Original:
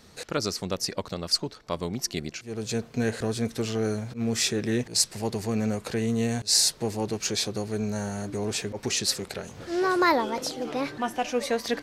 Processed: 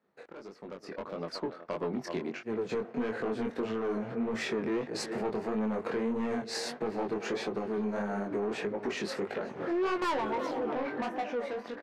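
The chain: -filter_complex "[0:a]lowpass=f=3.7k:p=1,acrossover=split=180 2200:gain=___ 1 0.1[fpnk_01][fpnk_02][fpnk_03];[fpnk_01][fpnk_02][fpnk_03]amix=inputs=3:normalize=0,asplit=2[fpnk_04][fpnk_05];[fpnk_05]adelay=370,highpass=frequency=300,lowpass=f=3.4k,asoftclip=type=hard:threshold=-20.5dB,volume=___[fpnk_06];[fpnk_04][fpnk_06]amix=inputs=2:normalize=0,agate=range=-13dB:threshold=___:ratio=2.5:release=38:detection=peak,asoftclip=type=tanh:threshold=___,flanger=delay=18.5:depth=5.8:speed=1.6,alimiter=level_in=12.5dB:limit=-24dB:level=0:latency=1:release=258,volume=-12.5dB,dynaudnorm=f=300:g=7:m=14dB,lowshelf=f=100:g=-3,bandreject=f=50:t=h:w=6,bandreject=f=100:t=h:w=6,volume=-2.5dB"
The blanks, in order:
0.0708, -16dB, -50dB, -28dB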